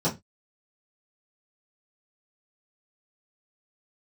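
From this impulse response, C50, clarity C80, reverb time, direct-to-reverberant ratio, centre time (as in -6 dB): 15.0 dB, 23.5 dB, 0.20 s, -11.0 dB, 17 ms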